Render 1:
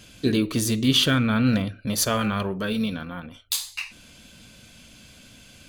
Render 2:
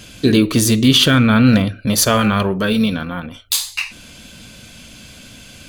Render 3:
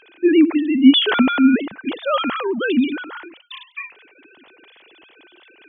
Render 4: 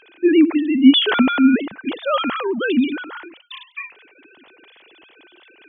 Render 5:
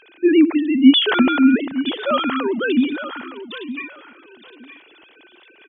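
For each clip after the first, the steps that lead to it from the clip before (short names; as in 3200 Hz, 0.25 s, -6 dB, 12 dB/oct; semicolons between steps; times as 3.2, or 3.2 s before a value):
maximiser +10.5 dB; gain -1 dB
sine-wave speech; gain -2.5 dB
nothing audible
feedback echo 0.916 s, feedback 19%, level -13 dB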